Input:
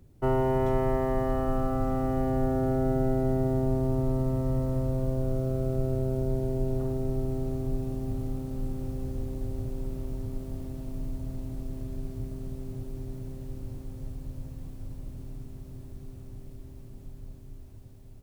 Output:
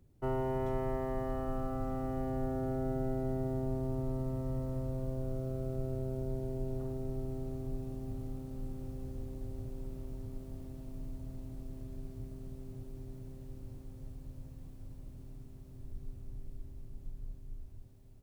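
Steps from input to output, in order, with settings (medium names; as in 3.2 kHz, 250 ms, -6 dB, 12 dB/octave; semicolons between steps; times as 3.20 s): 15.79–17.85 s: bass shelf 64 Hz +11.5 dB; trim -8.5 dB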